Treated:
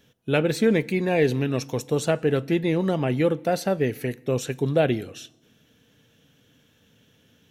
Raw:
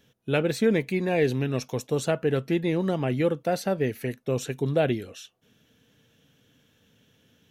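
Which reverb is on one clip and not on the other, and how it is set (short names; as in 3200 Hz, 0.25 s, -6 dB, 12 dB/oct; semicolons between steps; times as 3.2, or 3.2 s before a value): FDN reverb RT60 0.9 s, low-frequency decay 1.25×, high-frequency decay 0.85×, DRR 19.5 dB; gain +2.5 dB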